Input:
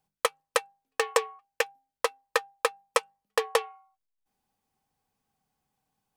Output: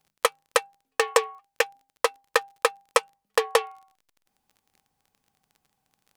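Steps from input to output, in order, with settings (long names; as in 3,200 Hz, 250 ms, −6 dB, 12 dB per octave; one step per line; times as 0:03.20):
surface crackle 24 per second −48 dBFS
level +4 dB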